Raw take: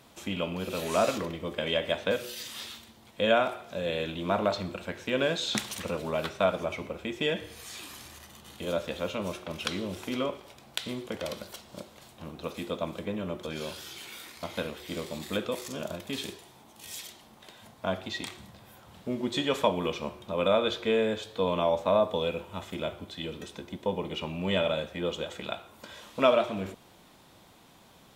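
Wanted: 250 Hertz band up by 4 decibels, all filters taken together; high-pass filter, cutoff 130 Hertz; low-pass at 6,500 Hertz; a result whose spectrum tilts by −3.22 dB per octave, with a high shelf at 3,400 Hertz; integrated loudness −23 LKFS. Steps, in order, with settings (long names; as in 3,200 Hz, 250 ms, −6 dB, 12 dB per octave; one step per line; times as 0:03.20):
high-pass filter 130 Hz
low-pass filter 6,500 Hz
parametric band 250 Hz +5.5 dB
high-shelf EQ 3,400 Hz +4.5 dB
level +6.5 dB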